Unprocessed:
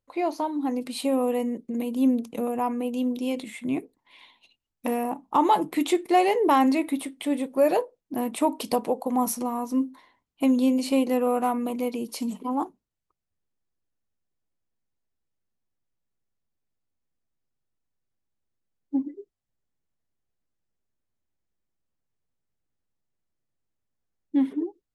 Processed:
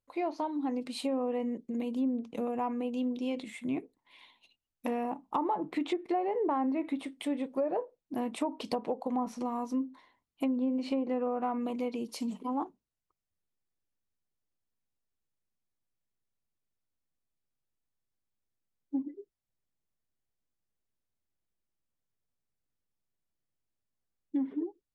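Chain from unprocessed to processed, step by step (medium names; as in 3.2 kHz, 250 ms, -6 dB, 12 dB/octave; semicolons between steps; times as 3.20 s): low-pass that closes with the level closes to 1.2 kHz, closed at -17.5 dBFS; compression, threshold -22 dBFS, peak gain reduction 7 dB; trim -5 dB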